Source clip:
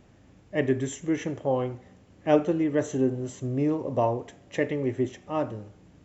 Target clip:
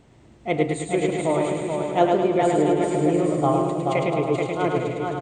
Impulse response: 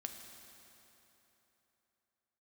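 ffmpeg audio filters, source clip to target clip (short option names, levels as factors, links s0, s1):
-filter_complex "[0:a]asplit=2[s0][s1];[s1]aecho=0:1:500|800|980|1088|1153:0.631|0.398|0.251|0.158|0.1[s2];[s0][s2]amix=inputs=2:normalize=0,asetrate=51156,aresample=44100,asplit=2[s3][s4];[s4]aecho=0:1:106|212|318|424|530|636|742:0.631|0.322|0.164|0.0837|0.0427|0.0218|0.0111[s5];[s3][s5]amix=inputs=2:normalize=0,volume=1.26"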